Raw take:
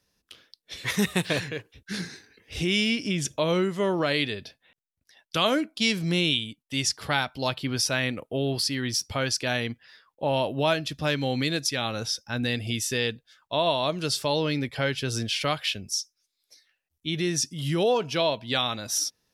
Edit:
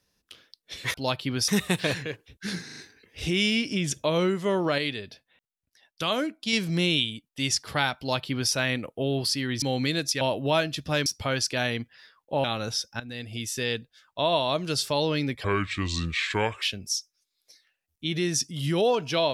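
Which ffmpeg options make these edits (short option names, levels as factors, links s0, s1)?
-filter_complex "[0:a]asplit=15[s0][s1][s2][s3][s4][s5][s6][s7][s8][s9][s10][s11][s12][s13][s14];[s0]atrim=end=0.942[s15];[s1]atrim=start=7.318:end=7.862[s16];[s2]atrim=start=0.938:end=2.152[s17];[s3]atrim=start=2.108:end=2.152[s18];[s4]atrim=start=2.108:end=2.152[s19];[s5]atrim=start=2.108:end=4.122[s20];[s6]atrim=start=4.118:end=5.872,asetpts=PTS-STARTPTS,volume=0.668[s21];[s7]atrim=start=5.868:end=8.962[s22];[s8]atrim=start=11.188:end=11.782[s23];[s9]atrim=start=10.338:end=11.192[s24];[s10]atrim=start=8.958:end=10.342[s25];[s11]atrim=start=11.778:end=12.34,asetpts=PTS-STARTPTS,afade=t=out:st=0.558:d=0.004:c=hsin:silence=0.149624[s26];[s12]atrim=start=12.34:end=14.784,asetpts=PTS-STARTPTS,afade=t=in:d=1.19:c=qsin:silence=0.149624[s27];[s13]atrim=start=14.78:end=15.64,asetpts=PTS-STARTPTS,asetrate=32193,aresample=44100,atrim=end_sample=51953,asetpts=PTS-STARTPTS[s28];[s14]atrim=start=15.636[s29];[s15][s16]acrossfade=d=0.004:c1=hsin:c2=hsin[s30];[s30][s17]acrossfade=d=0.004:c1=hsin:c2=hsin[s31];[s31][s18]acrossfade=d=0.004:c1=hsin:c2=hsin[s32];[s32][s19]acrossfade=d=0.004:c1=hsin:c2=hsin[s33];[s33][s20]acrossfade=d=0.004:c1=hsin:c2=hsin[s34];[s34][s21]acrossfade=d=0.004:c1=hsin:c2=hsin[s35];[s35][s22]acrossfade=d=0.004:c1=hsin:c2=hsin[s36];[s36][s23]acrossfade=d=0.004:c1=hsin:c2=hsin[s37];[s37][s24]acrossfade=d=0.004:c1=hsin:c2=hsin[s38];[s38][s25]acrossfade=d=0.004:c1=hsin:c2=hsin[s39];[s26][s27]concat=n=2:v=0:a=1[s40];[s39][s40]acrossfade=d=0.004:c1=hsin:c2=hsin[s41];[s41][s28]acrossfade=d=0.004:c1=hsin:c2=hsin[s42];[s42][s29]acrossfade=d=0.004:c1=hsin:c2=hsin"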